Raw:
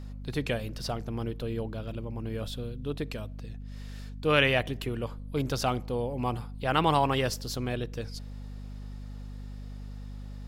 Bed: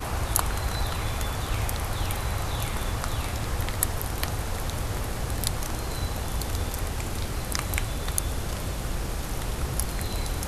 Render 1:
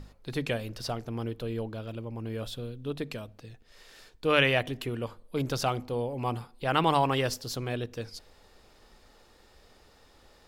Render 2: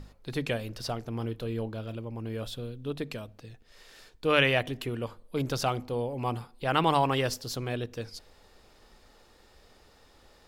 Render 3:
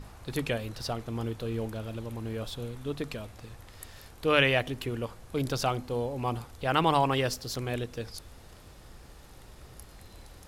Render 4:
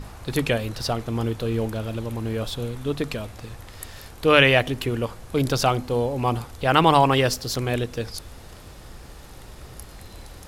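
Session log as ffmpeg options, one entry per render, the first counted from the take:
-af "bandreject=f=50:t=h:w=6,bandreject=f=100:t=h:w=6,bandreject=f=150:t=h:w=6,bandreject=f=200:t=h:w=6,bandreject=f=250:t=h:w=6"
-filter_complex "[0:a]asettb=1/sr,asplit=3[s0][s1][s2];[s0]atrim=end=1.104[s3];[s1]atrim=start=1.1:end=1.97,asetpts=PTS-STARTPTS,afade=t=in:d=0.004:c=qsin,afade=t=out:st=0.866:d=0.004:c=qsin,asplit=2[s4][s5];[s5]adelay=27,volume=0.2[s6];[s4][s6]amix=inputs=2:normalize=0,atrim=end_sample=38367[s7];[s2]atrim=start=1.966[s8];[s3][s7]acrossfade=d=0.004:c1=hsin:c2=qsin[s9];[s9][s8]acrossfade=d=0.004:c1=qsin:c2=hsin"
-filter_complex "[1:a]volume=0.0891[s0];[0:a][s0]amix=inputs=2:normalize=0"
-af "volume=2.51,alimiter=limit=0.708:level=0:latency=1"

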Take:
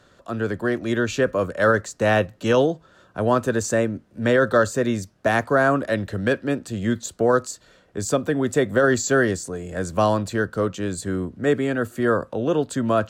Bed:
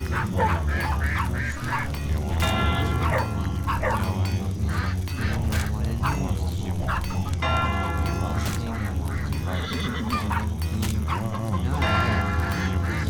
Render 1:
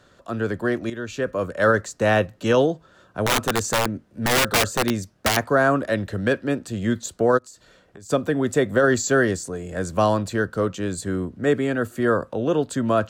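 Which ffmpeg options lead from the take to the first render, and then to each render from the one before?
-filter_complex "[0:a]asettb=1/sr,asplit=3[s0][s1][s2];[s0]atrim=end=3.254[s3];[s1]atrim=start=3.25:end=5.37,asetpts=PTS-STARTPTS,afade=t=in:d=0.004:c=qsin,afade=t=out:st=2.116:d=0.004:c=qsin,aeval=exprs='(mod(4.47*val(0)+1,2)-1)/4.47':c=same[s4];[s2]atrim=start=5.366[s5];[s3][s4]acrossfade=d=0.004:c1=hsin:c2=qsin[s6];[s6][s5]acrossfade=d=0.004:c1=qsin:c2=hsin,asplit=3[s7][s8][s9];[s7]afade=t=out:st=7.37:d=0.02[s10];[s8]acompressor=threshold=0.0112:ratio=16:attack=3.2:release=140:knee=1:detection=peak,afade=t=in:st=7.37:d=0.02,afade=t=out:st=8.09:d=0.02[s11];[s9]afade=t=in:st=8.09:d=0.02[s12];[s10][s11][s12]amix=inputs=3:normalize=0,asplit=2[s13][s14];[s13]atrim=end=0.9,asetpts=PTS-STARTPTS,afade=t=out:st=0.896:d=0.004:c=hsin:silence=0.237137[s15];[s14]atrim=start=0.9,asetpts=PTS-STARTPTS,afade=t=in:d=0.75:silence=0.237137[s16];[s15][s16]concat=n=2:v=0:a=1"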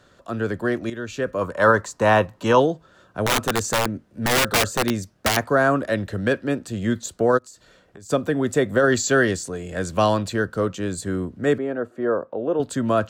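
-filter_complex "[0:a]asettb=1/sr,asplit=3[s0][s1][s2];[s0]atrim=end=1.414[s3];[s1]atrim=start=1.41:end=2.6,asetpts=PTS-STARTPTS,afade=t=in:d=0.004:c=qsin,afade=t=out:st=1.186:d=0.004:c=qsin,equalizer=f=980:w=3.1:g=13[s4];[s2]atrim=start=2.596[s5];[s3][s4]acrossfade=d=0.004:c1=hsin:c2=qsin[s6];[s6][s5]acrossfade=d=0.004:c1=qsin:c2=hsin,asettb=1/sr,asplit=3[s7][s8][s9];[s7]atrim=end=8.924[s10];[s8]atrim=start=8.92:end=10.32,asetpts=PTS-STARTPTS,afade=t=in:d=0.004:c=qsin,afade=t=out:st=1.396:d=0.004:c=qsin,equalizer=f=3100:t=o:w=1.4:g=5.5[s11];[s9]atrim=start=10.316[s12];[s10][s11]acrossfade=d=0.004:c1=hsin:c2=qsin[s13];[s13][s12]acrossfade=d=0.004:c1=qsin:c2=hsin,asettb=1/sr,asplit=3[s14][s15][s16];[s14]atrim=end=11.584[s17];[s15]atrim=start=11.58:end=12.6,asetpts=PTS-STARTPTS,afade=t=in:d=0.004:c=qsin,afade=t=out:st=1.016:d=0.004:c=qsin,bandpass=f=550:t=q:w=0.88[s18];[s16]atrim=start=12.596[s19];[s17][s18]acrossfade=d=0.004:c1=hsin:c2=qsin[s20];[s20][s19]acrossfade=d=0.004:c1=qsin:c2=hsin"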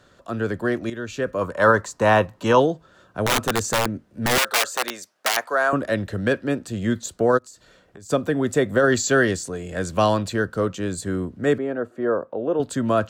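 -filter_complex "[0:a]asettb=1/sr,asplit=3[s0][s1][s2];[s0]atrim=end=4.384[s3];[s1]atrim=start=4.38:end=5.73,asetpts=PTS-STARTPTS,afade=t=in:d=0.004:c=qsin,afade=t=out:st=1.346:d=0.004:c=qsin,highpass=640[s4];[s2]atrim=start=5.726[s5];[s3][s4]acrossfade=d=0.004:c1=hsin:c2=qsin[s6];[s6][s5]acrossfade=d=0.004:c1=qsin:c2=hsin"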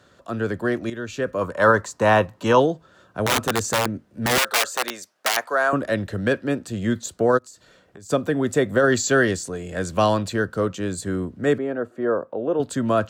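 -af "highpass=53"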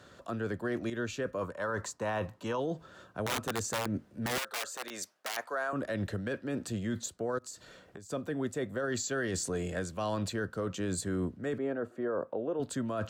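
-af "areverse,acompressor=threshold=0.0447:ratio=16,areverse,alimiter=level_in=1.06:limit=0.0631:level=0:latency=1:release=118,volume=0.944"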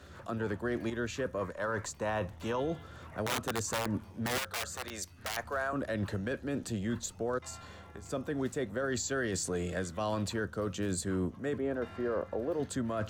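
-filter_complex "[1:a]volume=0.0447[s0];[0:a][s0]amix=inputs=2:normalize=0"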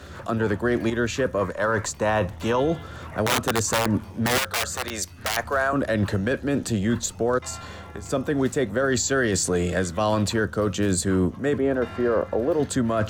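-af "volume=3.55"

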